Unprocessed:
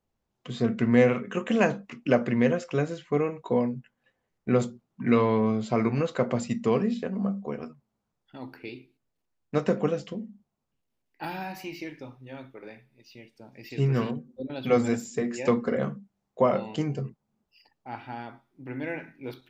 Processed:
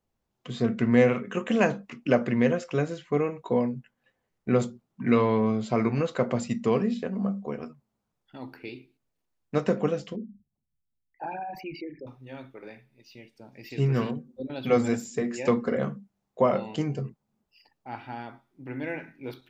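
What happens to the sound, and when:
10.16–12.07 s: resonances exaggerated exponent 3

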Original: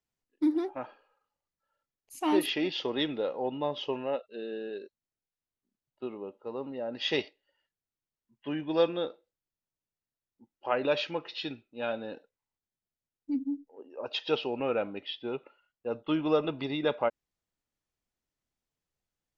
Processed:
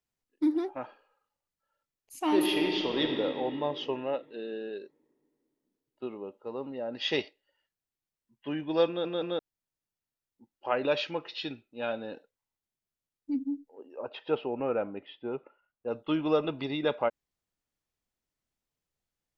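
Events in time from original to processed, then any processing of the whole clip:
2.28–3.17 s: reverb throw, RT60 2.9 s, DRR 2 dB
8.88 s: stutter in place 0.17 s, 3 plays
14.03–15.88 s: low-pass 1.7 kHz

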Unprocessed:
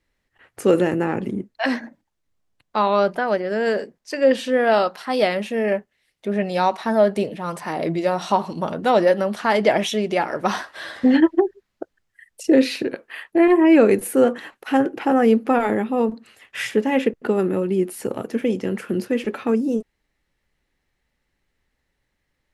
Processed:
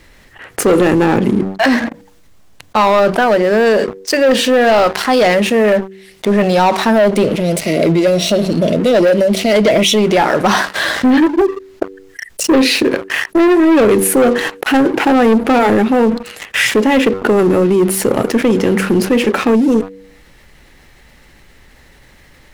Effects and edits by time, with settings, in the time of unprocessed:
6.98–10.09 s: brick-wall FIR band-stop 700–1900 Hz
whole clip: de-hum 96.08 Hz, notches 5; waveshaping leveller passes 3; level flattener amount 50%; trim -2 dB

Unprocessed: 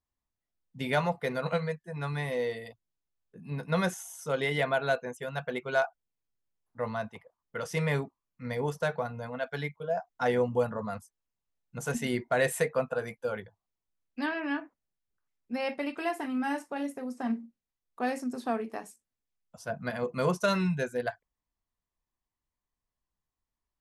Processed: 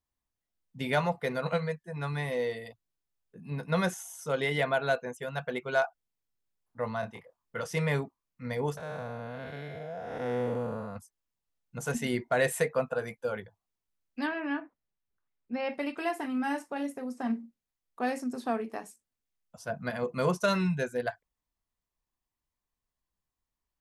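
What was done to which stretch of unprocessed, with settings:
7.00–7.61 s: doubling 26 ms -4 dB
8.77–10.96 s: spectral blur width 339 ms
14.27–15.74 s: distance through air 170 m

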